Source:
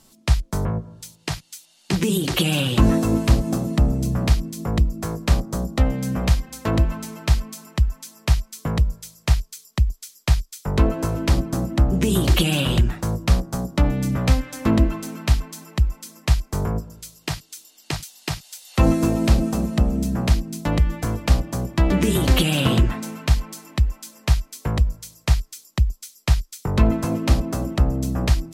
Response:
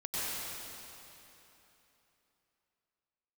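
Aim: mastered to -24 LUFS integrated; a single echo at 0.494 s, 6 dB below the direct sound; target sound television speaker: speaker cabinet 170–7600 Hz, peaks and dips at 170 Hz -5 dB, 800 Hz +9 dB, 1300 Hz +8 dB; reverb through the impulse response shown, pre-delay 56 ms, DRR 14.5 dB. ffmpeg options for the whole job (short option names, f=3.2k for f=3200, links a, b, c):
-filter_complex "[0:a]aecho=1:1:494:0.501,asplit=2[a][b];[1:a]atrim=start_sample=2205,adelay=56[c];[b][c]afir=irnorm=-1:irlink=0,volume=-20.5dB[d];[a][d]amix=inputs=2:normalize=0,highpass=f=170:w=0.5412,highpass=f=170:w=1.3066,equalizer=f=170:t=q:w=4:g=-5,equalizer=f=800:t=q:w=4:g=9,equalizer=f=1.3k:t=q:w=4:g=8,lowpass=f=7.6k:w=0.5412,lowpass=f=7.6k:w=1.3066,volume=0.5dB"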